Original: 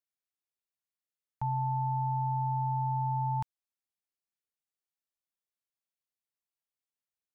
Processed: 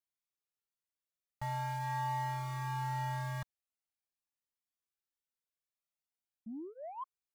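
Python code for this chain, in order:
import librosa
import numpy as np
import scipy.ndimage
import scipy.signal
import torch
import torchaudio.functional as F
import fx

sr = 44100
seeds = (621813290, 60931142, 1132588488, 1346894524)

p1 = fx.quant_companded(x, sr, bits=2)
p2 = x + (p1 * librosa.db_to_amplitude(-11.5))
p3 = fx.spec_paint(p2, sr, seeds[0], shape='rise', start_s=6.46, length_s=0.58, low_hz=210.0, high_hz=1100.0, level_db=-38.0)
p4 = 10.0 ** (-30.0 / 20.0) * np.tanh(p3 / 10.0 ** (-30.0 / 20.0))
y = fx.comb_cascade(p4, sr, direction='rising', hz=0.44)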